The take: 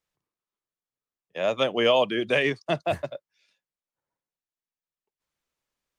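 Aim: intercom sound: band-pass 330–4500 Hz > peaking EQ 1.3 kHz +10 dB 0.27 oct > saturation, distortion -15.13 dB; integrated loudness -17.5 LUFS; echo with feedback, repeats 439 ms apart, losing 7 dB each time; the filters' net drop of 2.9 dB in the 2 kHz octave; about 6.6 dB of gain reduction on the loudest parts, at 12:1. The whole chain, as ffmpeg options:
-af "equalizer=f=2000:t=o:g=-4.5,acompressor=threshold=0.0708:ratio=12,highpass=330,lowpass=4500,equalizer=f=1300:t=o:w=0.27:g=10,aecho=1:1:439|878|1317|1756|2195:0.447|0.201|0.0905|0.0407|0.0183,asoftclip=threshold=0.075,volume=5.31"

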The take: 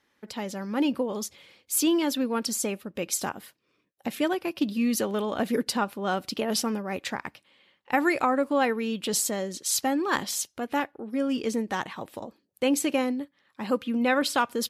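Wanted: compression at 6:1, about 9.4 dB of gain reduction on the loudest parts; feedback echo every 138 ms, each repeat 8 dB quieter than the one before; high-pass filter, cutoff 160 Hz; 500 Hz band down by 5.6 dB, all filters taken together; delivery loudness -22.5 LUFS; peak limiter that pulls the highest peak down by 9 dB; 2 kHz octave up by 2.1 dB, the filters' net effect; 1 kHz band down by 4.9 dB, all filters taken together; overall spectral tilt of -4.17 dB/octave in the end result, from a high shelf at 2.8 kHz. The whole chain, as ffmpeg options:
-af "highpass=160,equalizer=f=500:t=o:g=-5.5,equalizer=f=1000:t=o:g=-5.5,equalizer=f=2000:t=o:g=8,highshelf=f=2800:g=-8.5,acompressor=threshold=0.0316:ratio=6,alimiter=level_in=1.12:limit=0.0631:level=0:latency=1,volume=0.891,aecho=1:1:138|276|414|552|690:0.398|0.159|0.0637|0.0255|0.0102,volume=4.22"

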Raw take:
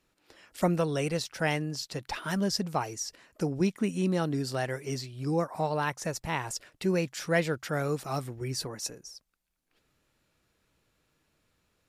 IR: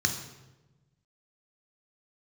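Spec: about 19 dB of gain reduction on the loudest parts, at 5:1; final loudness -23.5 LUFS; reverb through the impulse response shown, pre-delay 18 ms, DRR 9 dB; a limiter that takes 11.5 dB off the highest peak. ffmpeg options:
-filter_complex "[0:a]acompressor=threshold=0.00708:ratio=5,alimiter=level_in=5.62:limit=0.0631:level=0:latency=1,volume=0.178,asplit=2[s0][s1];[1:a]atrim=start_sample=2205,adelay=18[s2];[s1][s2]afir=irnorm=-1:irlink=0,volume=0.133[s3];[s0][s3]amix=inputs=2:normalize=0,volume=15"

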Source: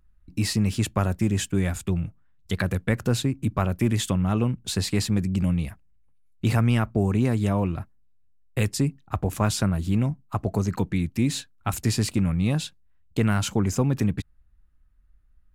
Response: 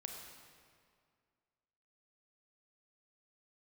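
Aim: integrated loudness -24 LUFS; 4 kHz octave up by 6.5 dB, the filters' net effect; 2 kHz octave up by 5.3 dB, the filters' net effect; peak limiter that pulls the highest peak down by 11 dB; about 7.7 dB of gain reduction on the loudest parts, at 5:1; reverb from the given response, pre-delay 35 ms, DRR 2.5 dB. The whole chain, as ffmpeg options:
-filter_complex "[0:a]equalizer=f=2000:t=o:g=5,equalizer=f=4000:t=o:g=6.5,acompressor=threshold=0.0501:ratio=5,alimiter=limit=0.0944:level=0:latency=1,asplit=2[s0][s1];[1:a]atrim=start_sample=2205,adelay=35[s2];[s1][s2]afir=irnorm=-1:irlink=0,volume=1[s3];[s0][s3]amix=inputs=2:normalize=0,volume=2.11"

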